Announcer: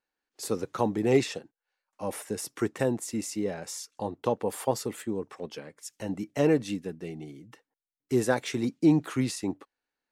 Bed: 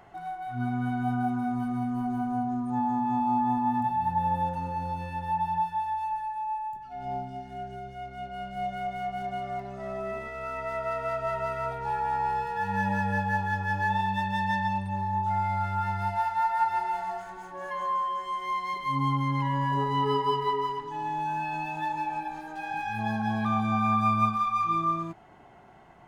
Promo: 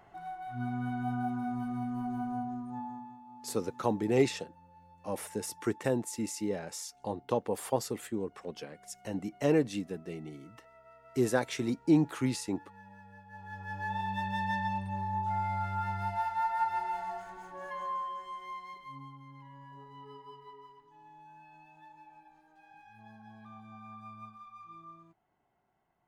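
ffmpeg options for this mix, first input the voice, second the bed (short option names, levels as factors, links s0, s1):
-filter_complex "[0:a]adelay=3050,volume=0.708[s0];[1:a]volume=5.96,afade=t=out:st=2.28:d=0.89:silence=0.0944061,afade=t=in:st=13.29:d=0.99:silence=0.0891251,afade=t=out:st=17.53:d=1.59:silence=0.112202[s1];[s0][s1]amix=inputs=2:normalize=0"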